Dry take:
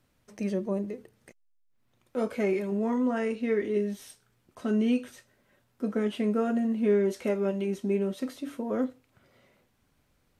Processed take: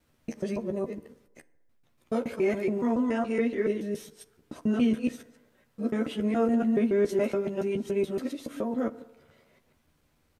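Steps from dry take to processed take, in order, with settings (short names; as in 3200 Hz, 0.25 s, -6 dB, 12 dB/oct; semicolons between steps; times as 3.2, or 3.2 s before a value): local time reversal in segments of 0.141 s; doubler 13 ms -6.5 dB; FDN reverb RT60 1.1 s, low-frequency decay 0.75×, high-frequency decay 0.4×, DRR 15 dB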